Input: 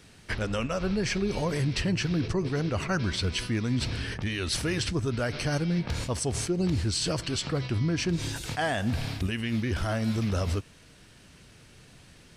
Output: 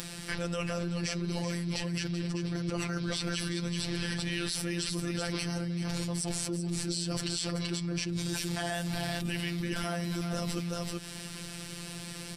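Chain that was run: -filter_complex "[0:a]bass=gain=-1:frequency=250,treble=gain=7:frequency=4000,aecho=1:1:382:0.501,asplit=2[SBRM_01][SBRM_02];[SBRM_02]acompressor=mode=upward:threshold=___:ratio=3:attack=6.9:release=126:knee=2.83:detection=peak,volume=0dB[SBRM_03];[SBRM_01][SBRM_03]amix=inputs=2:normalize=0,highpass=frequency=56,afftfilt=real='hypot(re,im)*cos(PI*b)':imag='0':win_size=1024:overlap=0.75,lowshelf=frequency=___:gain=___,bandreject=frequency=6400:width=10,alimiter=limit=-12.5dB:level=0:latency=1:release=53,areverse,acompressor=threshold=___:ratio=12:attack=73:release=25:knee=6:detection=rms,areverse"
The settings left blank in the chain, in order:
-32dB, 170, 5.5, -36dB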